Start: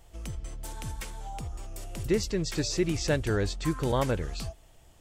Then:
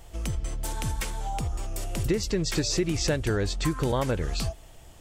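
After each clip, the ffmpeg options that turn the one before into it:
ffmpeg -i in.wav -af "acompressor=threshold=-30dB:ratio=5,volume=7.5dB" out.wav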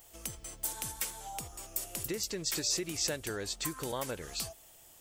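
ffmpeg -i in.wav -af "aemphasis=mode=production:type=bsi,volume=-8.5dB" out.wav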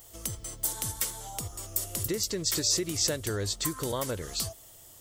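ffmpeg -i in.wav -af "equalizer=frequency=100:width_type=o:width=0.33:gain=10,equalizer=frequency=800:width_type=o:width=0.33:gain=-6,equalizer=frequency=1600:width_type=o:width=0.33:gain=-4,equalizer=frequency=2500:width_type=o:width=0.33:gain=-8,volume=5.5dB" out.wav

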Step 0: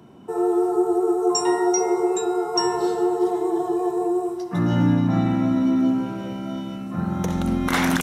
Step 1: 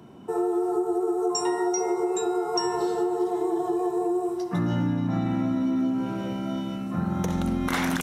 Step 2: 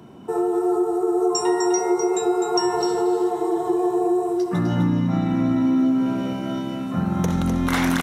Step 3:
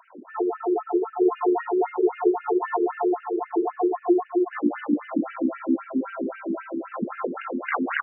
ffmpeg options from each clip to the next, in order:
ffmpeg -i in.wav -af "acompressor=threshold=-22dB:ratio=6" out.wav
ffmpeg -i in.wav -af "aecho=1:1:253:0.473,volume=3.5dB" out.wav
ffmpeg -i in.wav -filter_complex "[0:a]asplit=2[link_01][link_02];[link_02]adelay=21,volume=-7dB[link_03];[link_01][link_03]amix=inputs=2:normalize=0,afftfilt=real='re*between(b*sr/1024,300*pow(2100/300,0.5+0.5*sin(2*PI*3.8*pts/sr))/1.41,300*pow(2100/300,0.5+0.5*sin(2*PI*3.8*pts/sr))*1.41)':imag='im*between(b*sr/1024,300*pow(2100/300,0.5+0.5*sin(2*PI*3.8*pts/sr))/1.41,300*pow(2100/300,0.5+0.5*sin(2*PI*3.8*pts/sr))*1.41)':win_size=1024:overlap=0.75,volume=4dB" out.wav

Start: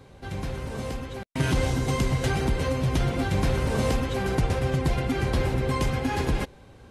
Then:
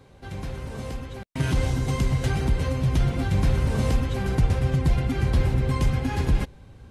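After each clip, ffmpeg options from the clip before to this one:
ffmpeg -i in.wav -af "asubboost=boost=2:cutoff=250,volume=-2.5dB" out.wav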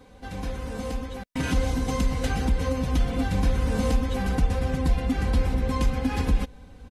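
ffmpeg -i in.wav -af "aecho=1:1:4:0.78,acompressor=threshold=-23dB:ratio=1.5" out.wav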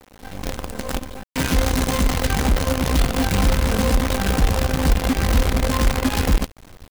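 ffmpeg -i in.wav -af "acrusher=bits=5:dc=4:mix=0:aa=0.000001,volume=4.5dB" out.wav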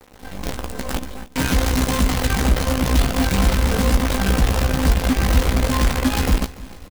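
ffmpeg -i in.wav -filter_complex "[0:a]asplit=2[link_01][link_02];[link_02]adelay=16,volume=-7dB[link_03];[link_01][link_03]amix=inputs=2:normalize=0,aecho=1:1:289|578|867|1156:0.1|0.049|0.024|0.0118" out.wav

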